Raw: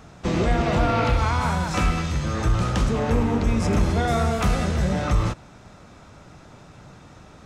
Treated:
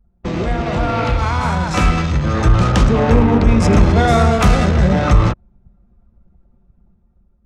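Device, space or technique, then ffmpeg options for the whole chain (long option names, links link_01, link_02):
voice memo with heavy noise removal: -af "anlmdn=25.1,dynaudnorm=framelen=660:gausssize=5:maxgain=9.5dB,volume=1.5dB"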